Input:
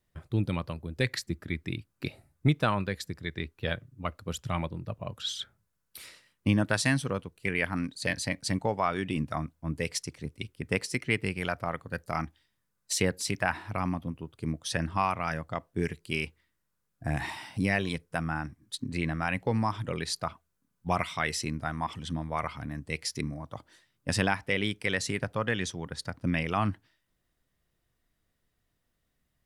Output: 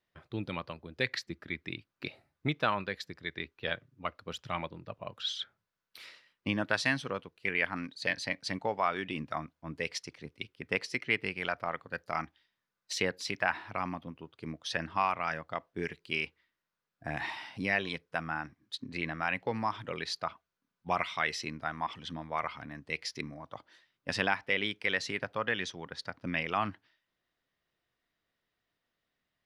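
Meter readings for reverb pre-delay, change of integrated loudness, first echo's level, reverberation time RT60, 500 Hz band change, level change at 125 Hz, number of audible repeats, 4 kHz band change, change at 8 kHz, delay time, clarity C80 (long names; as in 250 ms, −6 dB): no reverb audible, −3.0 dB, no echo audible, no reverb audible, −3.5 dB, −11.5 dB, no echo audible, −1.5 dB, −9.5 dB, no echo audible, no reverb audible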